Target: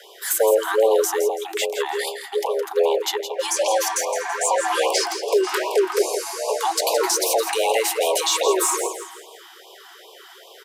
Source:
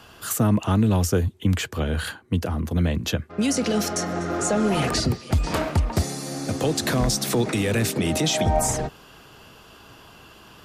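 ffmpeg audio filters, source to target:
-filter_complex "[0:a]highshelf=f=11000:g=4.5,asplit=2[s0][s1];[s1]aeval=exprs='clip(val(0),-1,0.0631)':c=same,volume=0.447[s2];[s0][s2]amix=inputs=2:normalize=0,aecho=1:1:166|332|498|664:0.355|0.135|0.0512|0.0195,afreqshift=330,afftfilt=real='re*(1-between(b*sr/1024,470*pow(1700/470,0.5+0.5*sin(2*PI*2.5*pts/sr))/1.41,470*pow(1700/470,0.5+0.5*sin(2*PI*2.5*pts/sr))*1.41))':imag='im*(1-between(b*sr/1024,470*pow(1700/470,0.5+0.5*sin(2*PI*2.5*pts/sr))/1.41,470*pow(1700/470,0.5+0.5*sin(2*PI*2.5*pts/sr))*1.41))':win_size=1024:overlap=0.75"

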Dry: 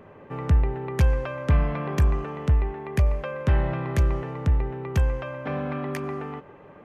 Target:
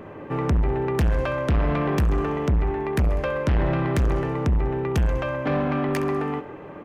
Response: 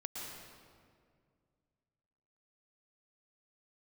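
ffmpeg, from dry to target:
-filter_complex "[0:a]equalizer=f=310:w=7.5:g=9.5,asplit=2[s0][s1];[s1]aecho=0:1:66|132|198|264|330|396:0.178|0.101|0.0578|0.0329|0.0188|0.0107[s2];[s0][s2]amix=inputs=2:normalize=0,asoftclip=type=tanh:threshold=0.0596,volume=2.37"

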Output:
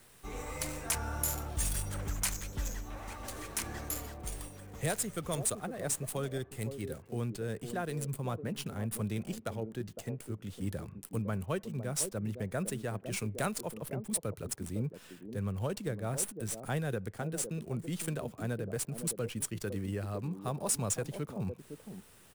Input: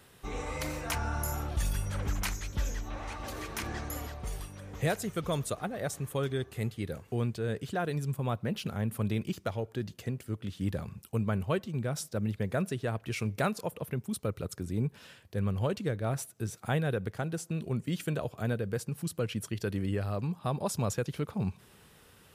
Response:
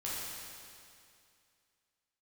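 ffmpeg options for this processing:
-filter_complex "[0:a]equalizer=f=8900:t=o:w=1.1:g=14.5,acrossover=split=170|760|2800[s0][s1][s2][s3];[s1]aecho=1:1:509:0.562[s4];[s3]acrusher=bits=6:dc=4:mix=0:aa=0.000001[s5];[s0][s4][s2][s5]amix=inputs=4:normalize=0,volume=0.596"

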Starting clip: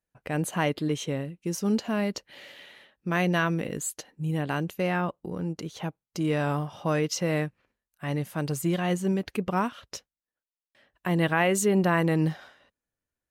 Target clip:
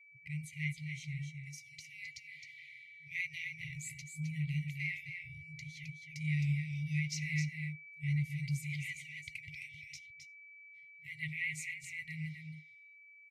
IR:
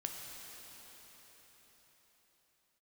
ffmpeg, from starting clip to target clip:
-filter_complex "[0:a]aeval=exprs='val(0)+0.00158*sin(2*PI*2300*n/s)':c=same,asplit=2[s0][s1];[s1]highshelf=f=5000:g=8.5[s2];[1:a]atrim=start_sample=2205,atrim=end_sample=4410[s3];[s2][s3]afir=irnorm=-1:irlink=0,volume=0.158[s4];[s0][s4]amix=inputs=2:normalize=0,dynaudnorm=f=210:g=31:m=1.68,asplit=3[s5][s6][s7];[s5]bandpass=f=300:t=q:w=8,volume=1[s8];[s6]bandpass=f=870:t=q:w=8,volume=0.501[s9];[s7]bandpass=f=2240:t=q:w=8,volume=0.355[s10];[s8][s9][s10]amix=inputs=3:normalize=0,equalizer=f=2900:w=2.2:g=-13.5,aecho=1:1:264:0.473,afftfilt=real='re*(1-between(b*sr/4096,160,1900))':imag='im*(1-between(b*sr/4096,160,1900))':win_size=4096:overlap=0.75,volume=5.01" -ar 44100 -c:a libvorbis -b:a 48k

